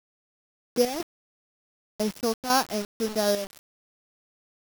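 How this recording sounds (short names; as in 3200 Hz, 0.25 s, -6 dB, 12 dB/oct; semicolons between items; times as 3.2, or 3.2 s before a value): a buzz of ramps at a fixed pitch in blocks of 8 samples; chopped level 2 Hz, depth 65%, duty 70%; a quantiser's noise floor 6-bit, dither none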